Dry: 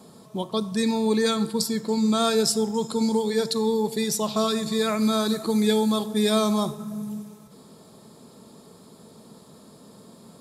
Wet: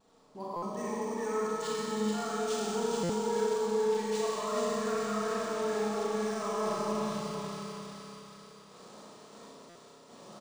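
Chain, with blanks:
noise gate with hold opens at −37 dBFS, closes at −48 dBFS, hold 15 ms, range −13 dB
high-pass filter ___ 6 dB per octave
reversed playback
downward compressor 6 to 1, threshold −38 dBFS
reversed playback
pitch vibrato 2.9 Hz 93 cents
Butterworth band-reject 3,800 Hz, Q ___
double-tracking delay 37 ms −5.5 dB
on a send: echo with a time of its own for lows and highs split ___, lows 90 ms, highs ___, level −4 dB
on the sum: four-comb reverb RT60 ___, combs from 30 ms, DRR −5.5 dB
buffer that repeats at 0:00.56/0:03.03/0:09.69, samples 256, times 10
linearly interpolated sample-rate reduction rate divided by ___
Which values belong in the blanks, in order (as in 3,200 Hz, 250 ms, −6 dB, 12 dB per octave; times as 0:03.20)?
820 Hz, 0.69, 1,300 Hz, 433 ms, 3.2 s, 3×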